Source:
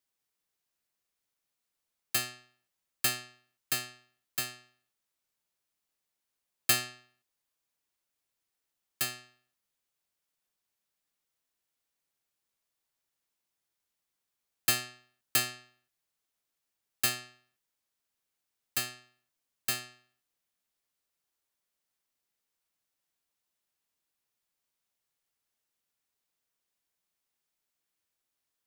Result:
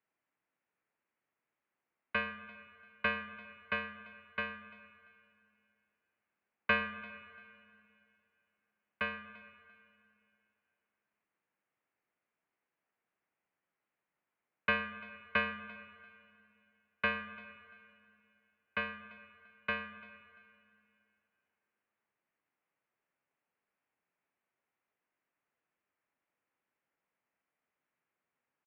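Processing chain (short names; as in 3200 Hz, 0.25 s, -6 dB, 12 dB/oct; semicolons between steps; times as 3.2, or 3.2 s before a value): feedback echo 0.342 s, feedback 24%, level -21 dB; mistuned SSB -160 Hz 300–2600 Hz; spring tank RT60 2.6 s, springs 40/52/57 ms, chirp 30 ms, DRR 12.5 dB; gain +4.5 dB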